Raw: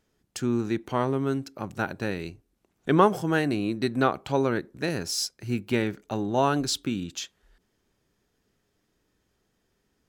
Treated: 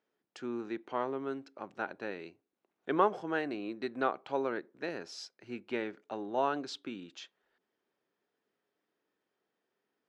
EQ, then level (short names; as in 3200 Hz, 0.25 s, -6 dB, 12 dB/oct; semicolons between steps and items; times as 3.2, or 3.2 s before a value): BPF 360–4500 Hz; high shelf 3400 Hz -8 dB; -6.0 dB